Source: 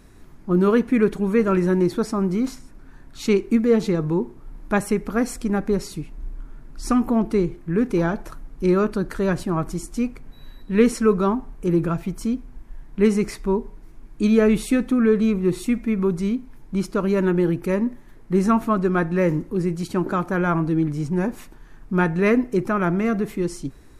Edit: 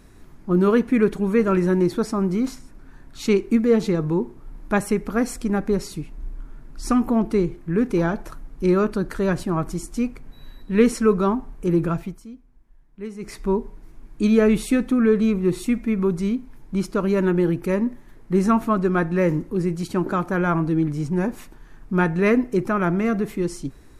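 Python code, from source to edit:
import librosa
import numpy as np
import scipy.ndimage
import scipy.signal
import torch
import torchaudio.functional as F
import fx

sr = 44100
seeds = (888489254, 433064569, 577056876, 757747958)

y = fx.edit(x, sr, fx.fade_down_up(start_s=11.97, length_s=1.46, db=-16.0, fade_s=0.25), tone=tone)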